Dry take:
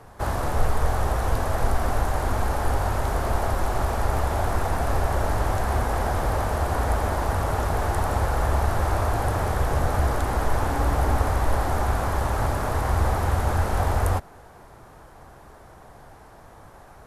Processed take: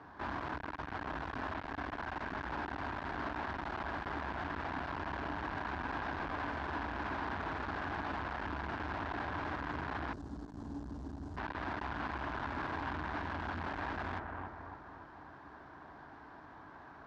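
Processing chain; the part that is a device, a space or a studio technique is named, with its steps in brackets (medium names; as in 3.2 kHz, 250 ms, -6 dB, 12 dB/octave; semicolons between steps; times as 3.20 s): analogue delay pedal into a guitar amplifier (bucket-brigade echo 282 ms, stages 4096, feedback 43%, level -10 dB; valve stage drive 31 dB, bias 0.4; cabinet simulation 80–4500 Hz, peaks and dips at 110 Hz -7 dB, 290 Hz +10 dB, 510 Hz -7 dB, 1 kHz +6 dB, 1.6 kHz +8 dB); 10.13–11.37 s: FFT filter 230 Hz 0 dB, 2.4 kHz -27 dB, 7.2 kHz +3 dB; trim -6 dB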